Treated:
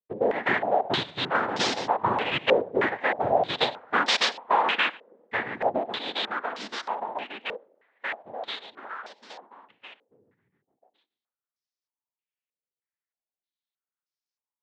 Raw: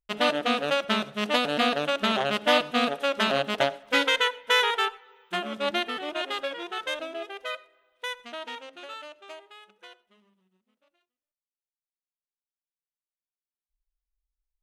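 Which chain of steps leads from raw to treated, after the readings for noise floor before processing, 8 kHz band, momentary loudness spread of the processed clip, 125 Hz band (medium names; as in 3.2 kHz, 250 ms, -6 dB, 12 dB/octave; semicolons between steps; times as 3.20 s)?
under -85 dBFS, 0.0 dB, 13 LU, +2.5 dB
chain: noise-vocoded speech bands 6; step-sequenced low-pass 3.2 Hz 500–5300 Hz; trim -3 dB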